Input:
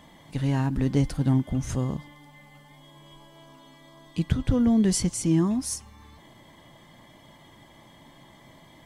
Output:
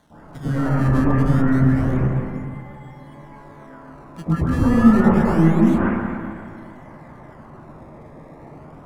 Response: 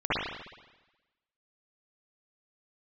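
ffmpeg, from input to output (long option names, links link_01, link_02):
-filter_complex "[0:a]acrusher=samples=17:mix=1:aa=0.000001:lfo=1:lforange=27.2:lforate=0.28,asoftclip=type=tanh:threshold=-20.5dB[link_01];[1:a]atrim=start_sample=2205,asetrate=22932,aresample=44100[link_02];[link_01][link_02]afir=irnorm=-1:irlink=0,volume=-8.5dB"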